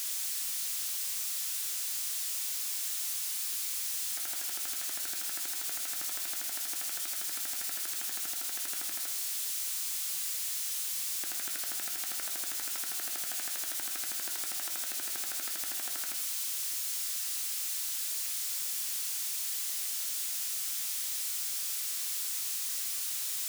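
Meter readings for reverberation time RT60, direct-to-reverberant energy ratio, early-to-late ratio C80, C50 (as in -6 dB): 0.90 s, 5.5 dB, 11.0 dB, 8.5 dB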